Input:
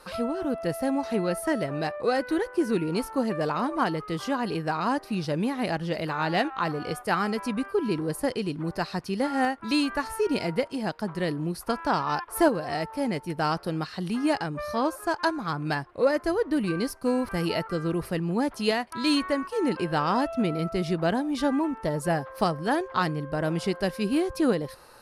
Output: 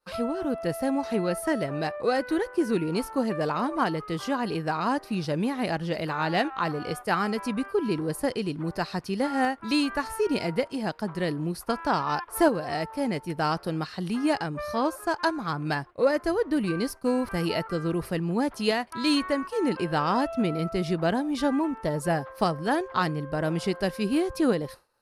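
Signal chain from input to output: expander -37 dBFS

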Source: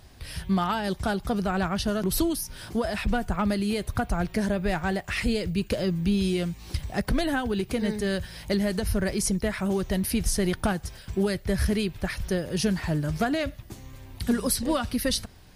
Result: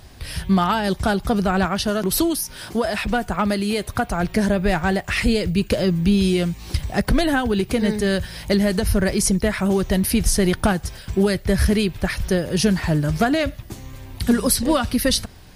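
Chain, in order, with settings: 1.65–4.23 low shelf 150 Hz -9.5 dB; gain +7 dB

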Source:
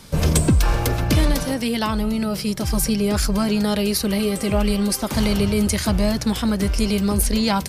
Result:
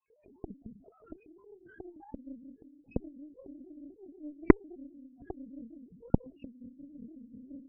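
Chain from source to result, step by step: sine-wave speech; tilt +2 dB/oct; on a send at -3.5 dB: reverb RT60 0.55 s, pre-delay 0.153 s; on the sum: formant shift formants -4 st; loudest bins only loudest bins 1; LPC vocoder at 8 kHz whisper; added harmonics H 3 -17 dB, 6 -18 dB, 7 -30 dB, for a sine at 9.5 dBFS; gain -13 dB

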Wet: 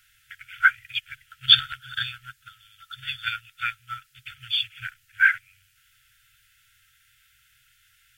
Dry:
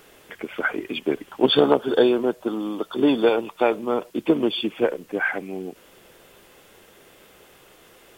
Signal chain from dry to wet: FFT band-reject 130–1300 Hz; upward expander 1.5:1, over -50 dBFS; gain +8.5 dB

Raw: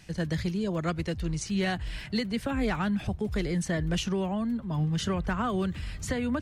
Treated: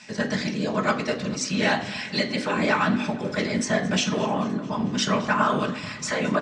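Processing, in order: whisperiser; speaker cabinet 290–7100 Hz, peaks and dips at 340 Hz -8 dB, 640 Hz +5 dB, 1100 Hz +5 dB; feedback echo 0.22 s, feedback 60%, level -19.5 dB; reverb RT60 0.55 s, pre-delay 3 ms, DRR 2.5 dB; gain +7 dB

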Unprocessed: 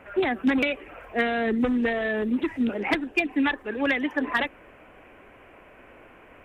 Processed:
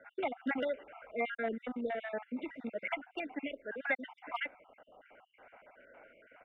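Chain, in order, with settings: random spectral dropouts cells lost 46%; three-band isolator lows -20 dB, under 260 Hz, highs -20 dB, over 2600 Hz; comb 1.4 ms, depth 58%; gain -6 dB

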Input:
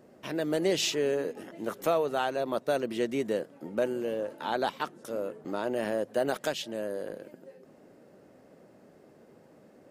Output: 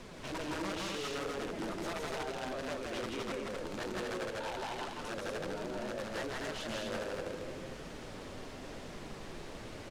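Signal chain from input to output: 2.17–4.68 HPF 300 Hz 12 dB/oct; transient shaper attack -3 dB, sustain +3 dB; compressor 10:1, threshold -37 dBFS, peak gain reduction 15 dB; added noise pink -53 dBFS; soft clip -39 dBFS, distortion -11 dB; flange 0.9 Hz, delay 3.9 ms, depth 8.6 ms, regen +39%; wrapped overs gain 42 dB; air absorption 69 m; loudspeakers at several distances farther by 56 m -2 dB, 83 m -3 dB; gain +7.5 dB

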